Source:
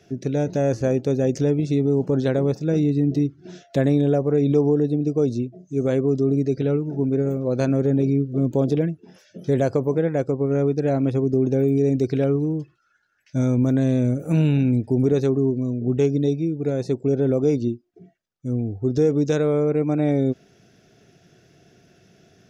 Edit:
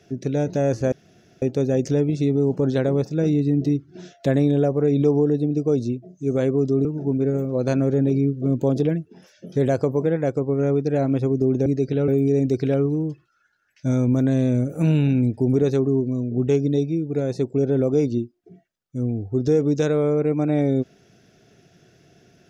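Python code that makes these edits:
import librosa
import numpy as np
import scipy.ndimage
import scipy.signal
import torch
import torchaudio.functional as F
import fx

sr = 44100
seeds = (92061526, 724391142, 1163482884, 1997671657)

y = fx.edit(x, sr, fx.insert_room_tone(at_s=0.92, length_s=0.5),
    fx.move(start_s=6.35, length_s=0.42, to_s=11.58), tone=tone)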